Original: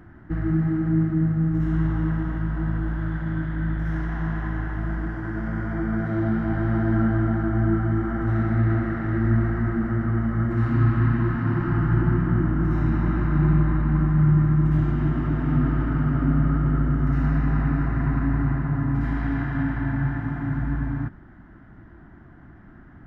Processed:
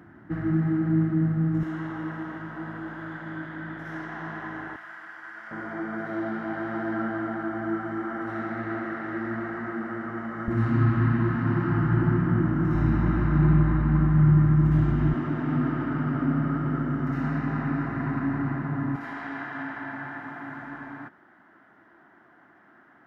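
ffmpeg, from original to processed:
-af "asetnsamples=n=441:p=0,asendcmd='1.63 highpass f 340;4.76 highpass f 1300;5.51 highpass f 370;10.48 highpass f 110;12.74 highpass f 53;15.14 highpass f 190;18.96 highpass f 490',highpass=150"

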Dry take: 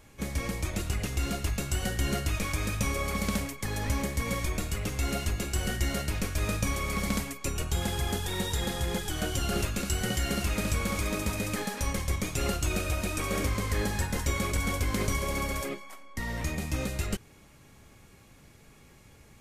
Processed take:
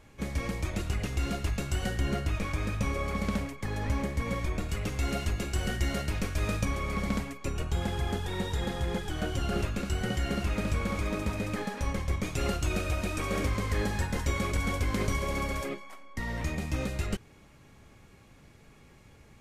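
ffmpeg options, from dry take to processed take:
-af "asetnsamples=n=441:p=0,asendcmd='1.99 lowpass f 2100;4.69 lowpass f 4500;6.65 lowpass f 2200;12.23 lowpass f 4200',lowpass=f=4k:p=1"

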